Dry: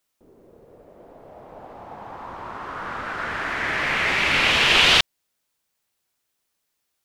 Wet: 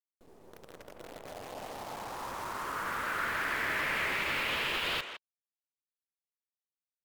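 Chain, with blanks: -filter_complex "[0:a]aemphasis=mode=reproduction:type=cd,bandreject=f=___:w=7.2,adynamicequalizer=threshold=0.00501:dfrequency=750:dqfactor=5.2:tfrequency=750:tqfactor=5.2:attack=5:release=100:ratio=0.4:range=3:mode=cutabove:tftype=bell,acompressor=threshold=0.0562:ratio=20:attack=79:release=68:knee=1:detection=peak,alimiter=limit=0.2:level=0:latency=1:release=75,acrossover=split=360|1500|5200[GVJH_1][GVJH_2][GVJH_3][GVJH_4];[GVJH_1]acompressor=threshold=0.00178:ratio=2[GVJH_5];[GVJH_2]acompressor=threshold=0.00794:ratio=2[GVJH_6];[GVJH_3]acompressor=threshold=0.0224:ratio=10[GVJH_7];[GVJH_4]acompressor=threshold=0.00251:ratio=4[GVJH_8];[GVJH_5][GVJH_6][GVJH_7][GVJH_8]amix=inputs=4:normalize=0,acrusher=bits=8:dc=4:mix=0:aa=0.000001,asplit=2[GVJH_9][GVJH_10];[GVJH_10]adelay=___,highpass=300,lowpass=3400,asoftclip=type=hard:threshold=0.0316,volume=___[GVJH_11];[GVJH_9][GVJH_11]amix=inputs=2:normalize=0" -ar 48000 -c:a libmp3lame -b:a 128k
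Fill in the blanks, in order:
5900, 160, 0.398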